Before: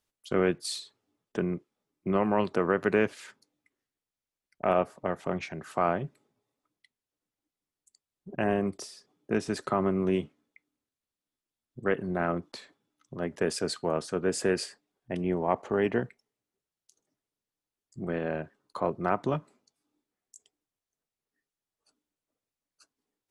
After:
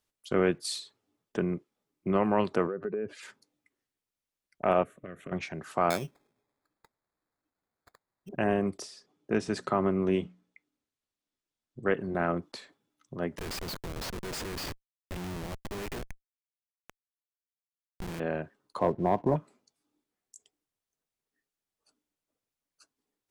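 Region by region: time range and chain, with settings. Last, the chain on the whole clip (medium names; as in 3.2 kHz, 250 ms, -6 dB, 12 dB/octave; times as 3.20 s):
2.67–3.23 s: spectral contrast enhancement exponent 1.9 + compression 4:1, threshold -30 dBFS + tape noise reduction on one side only decoder only
4.83–5.32 s: compression 10:1, threshold -32 dBFS + static phaser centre 2.1 kHz, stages 4
5.90–8.29 s: tone controls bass -3 dB, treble +4 dB + sample-rate reducer 2.9 kHz
8.82–12.15 s: low-pass 8.4 kHz + hum notches 60/120/180/240 Hz
13.38–18.20 s: frequency weighting D + compression 3:1, threshold -29 dBFS + Schmitt trigger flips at -34.5 dBFS
18.79–19.36 s: brick-wall FIR low-pass 1.1 kHz + waveshaping leveller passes 1
whole clip: none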